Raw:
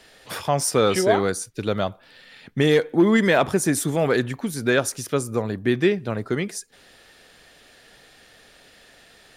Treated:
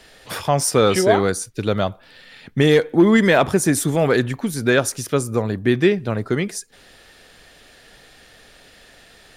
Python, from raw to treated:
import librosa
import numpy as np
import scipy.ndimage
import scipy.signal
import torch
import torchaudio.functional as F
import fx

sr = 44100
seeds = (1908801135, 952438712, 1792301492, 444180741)

y = fx.low_shelf(x, sr, hz=74.0, db=7.5)
y = y * librosa.db_to_amplitude(3.0)